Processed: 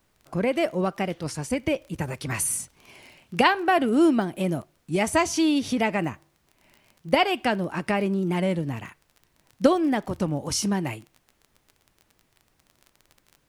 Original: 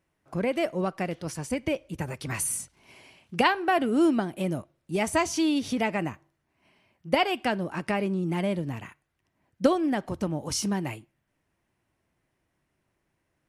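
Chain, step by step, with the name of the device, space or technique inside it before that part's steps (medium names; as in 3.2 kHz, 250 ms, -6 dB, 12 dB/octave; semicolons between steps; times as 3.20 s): warped LP (warped record 33 1/3 rpm, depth 100 cents; crackle 21 per s -39 dBFS; pink noise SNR 43 dB); trim +3 dB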